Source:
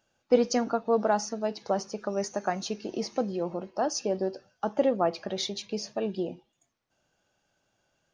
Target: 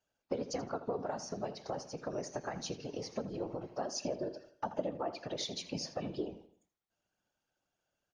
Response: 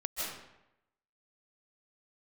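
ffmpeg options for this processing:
-filter_complex "[0:a]agate=range=0.316:threshold=0.00282:ratio=16:detection=peak,asettb=1/sr,asplit=3[s0][s1][s2];[s0]atrim=end=3.974[s3];[s1]atrim=start=3.97:end=6.29,asetpts=PTS-STARTPTS,afade=t=in:d=0.004:c=qsin,afade=t=out:st=2.316:d=0.004:c=qsin,aecho=1:1:3.4:0.82,atrim=end_sample=102312[s4];[s2]atrim=start=6.286[s5];[s3][s4]acrossfade=d=0.004:c1=hsin:c2=qsin[s6];[s6][s5]acrossfade=d=0.004:c1=qsin:c2=hsin,acompressor=threshold=0.02:ratio=4,afftfilt=real='hypot(re,im)*cos(2*PI*random(0))':imag='hypot(re,im)*sin(2*PI*random(1))':win_size=512:overlap=0.75,asplit=2[s7][s8];[s8]adelay=81,lowpass=f=4300:p=1,volume=0.224,asplit=2[s9][s10];[s10]adelay=81,lowpass=f=4300:p=1,volume=0.41,asplit=2[s11][s12];[s12]adelay=81,lowpass=f=4300:p=1,volume=0.41,asplit=2[s13][s14];[s14]adelay=81,lowpass=f=4300:p=1,volume=0.41[s15];[s7][s9][s11][s13][s15]amix=inputs=5:normalize=0,volume=1.58"

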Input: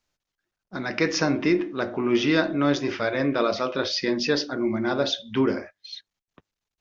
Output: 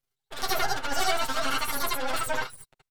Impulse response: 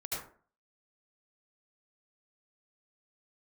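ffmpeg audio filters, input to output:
-filter_complex "[0:a]aeval=exprs='max(val(0),0)':c=same,asplit=2[s0][s1];[s1]adelay=18,volume=0.794[s2];[s0][s2]amix=inputs=2:normalize=0,asetrate=103194,aresample=44100[s3];[1:a]atrim=start_sample=2205,atrim=end_sample=3528[s4];[s3][s4]afir=irnorm=-1:irlink=0"

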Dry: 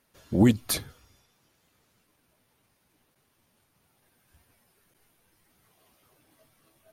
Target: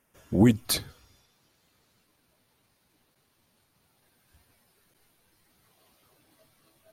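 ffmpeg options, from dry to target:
-af "asetnsamples=n=441:p=0,asendcmd='0.65 equalizer g 5',equalizer=f=4200:w=3.6:g=-12"

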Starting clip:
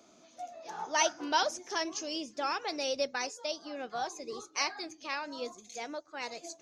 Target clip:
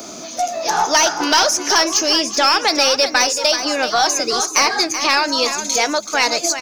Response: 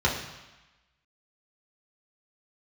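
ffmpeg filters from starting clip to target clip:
-filter_complex "[0:a]apsyclip=22.4,aexciter=amount=2.1:drive=4.7:freq=4600,acrossover=split=890|2400[s0][s1][s2];[s0]acompressor=threshold=0.0794:ratio=4[s3];[s1]acompressor=threshold=0.178:ratio=4[s4];[s2]acompressor=threshold=0.178:ratio=4[s5];[s3][s4][s5]amix=inputs=3:normalize=0,aeval=exprs='(tanh(1.26*val(0)+0.1)-tanh(0.1))/1.26':c=same,asplit=2[s6][s7];[s7]aecho=0:1:380:0.335[s8];[s6][s8]amix=inputs=2:normalize=0,volume=0.891"

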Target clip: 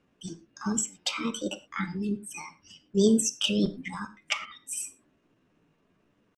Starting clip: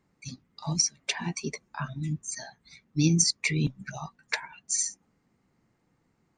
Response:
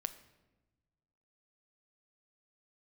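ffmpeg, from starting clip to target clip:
-filter_complex "[0:a]asetrate=58866,aresample=44100,atempo=0.749154,lowpass=5800[s0];[1:a]atrim=start_sample=2205,afade=t=out:st=0.17:d=0.01,atrim=end_sample=7938[s1];[s0][s1]afir=irnorm=-1:irlink=0,volume=1.5"

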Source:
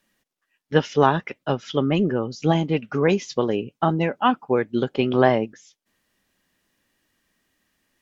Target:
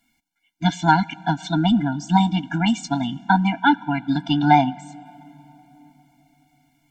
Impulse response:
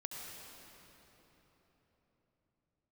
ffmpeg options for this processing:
-filter_complex "[0:a]asetrate=51156,aresample=44100,asplit=2[s0][s1];[1:a]atrim=start_sample=2205[s2];[s1][s2]afir=irnorm=-1:irlink=0,volume=0.119[s3];[s0][s3]amix=inputs=2:normalize=0,afftfilt=real='re*eq(mod(floor(b*sr/1024/340),2),0)':imag='im*eq(mod(floor(b*sr/1024/340),2),0)':win_size=1024:overlap=0.75,volume=1.68"

